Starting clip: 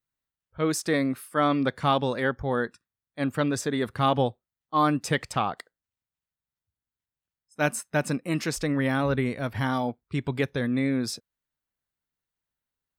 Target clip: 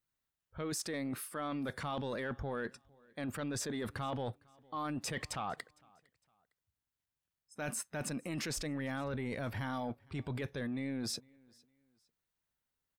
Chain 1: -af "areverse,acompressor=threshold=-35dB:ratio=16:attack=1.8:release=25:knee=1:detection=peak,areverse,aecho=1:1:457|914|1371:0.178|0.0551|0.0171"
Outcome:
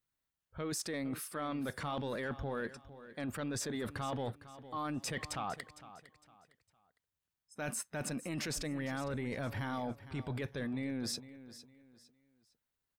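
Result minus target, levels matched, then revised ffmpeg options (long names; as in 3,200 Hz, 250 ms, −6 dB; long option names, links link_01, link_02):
echo-to-direct +12 dB
-af "areverse,acompressor=threshold=-35dB:ratio=16:attack=1.8:release=25:knee=1:detection=peak,areverse,aecho=1:1:457|914:0.0447|0.0138"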